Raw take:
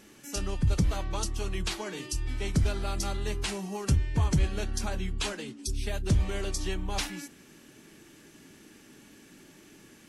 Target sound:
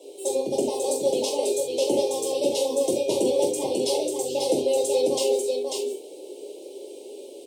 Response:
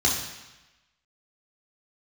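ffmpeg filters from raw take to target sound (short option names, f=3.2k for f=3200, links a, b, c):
-filter_complex "[0:a]highpass=f=280:w=0.5412,highpass=f=280:w=1.3066,highshelf=f=2k:g=-11.5,aecho=1:1:733:0.668[a];[1:a]atrim=start_sample=2205,afade=t=out:st=0.17:d=0.01,atrim=end_sample=7938[b];[a][b]afir=irnorm=-1:irlink=0,asetrate=59535,aresample=44100,asuperstop=centerf=1500:order=8:qfactor=0.77"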